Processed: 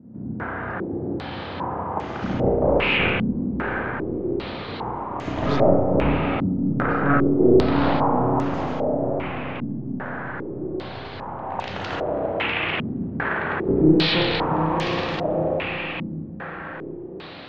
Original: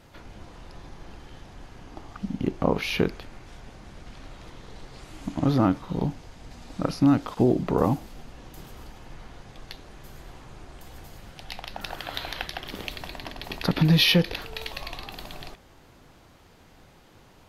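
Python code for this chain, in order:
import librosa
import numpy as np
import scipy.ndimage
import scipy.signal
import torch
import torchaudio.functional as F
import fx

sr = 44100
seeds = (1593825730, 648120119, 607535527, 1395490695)

p1 = fx.spec_clip(x, sr, under_db=14)
p2 = scipy.signal.sosfilt(scipy.signal.butter(4, 77.0, 'highpass', fs=sr, output='sos'), p1)
p3 = fx.rider(p2, sr, range_db=4, speed_s=0.5)
p4 = p2 + (p3 * 10.0 ** (1.0 / 20.0))
p5 = 10.0 ** (-11.0 / 20.0) * np.tanh(p4 / 10.0 ** (-11.0 / 20.0))
p6 = fx.echo_diffused(p5, sr, ms=715, feedback_pct=53, wet_db=-8.5)
p7 = np.clip(10.0 ** (20.0 / 20.0) * p6, -1.0, 1.0) / 10.0 ** (20.0 / 20.0)
p8 = fx.air_absorb(p7, sr, metres=320.0)
p9 = fx.rev_spring(p8, sr, rt60_s=1.4, pass_ms=(32, 49), chirp_ms=50, drr_db=-2.5)
p10 = fx.filter_held_lowpass(p9, sr, hz=2.5, low_hz=230.0, high_hz=6800.0)
y = p10 * 10.0 ** (-1.0 / 20.0)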